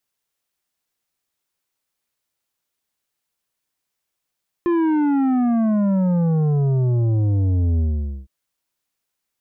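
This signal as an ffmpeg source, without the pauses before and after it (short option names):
-f lavfi -i "aevalsrc='0.15*clip((3.61-t)/0.48,0,1)*tanh(2.82*sin(2*PI*350*3.61/log(65/350)*(exp(log(65/350)*t/3.61)-1)))/tanh(2.82)':d=3.61:s=44100"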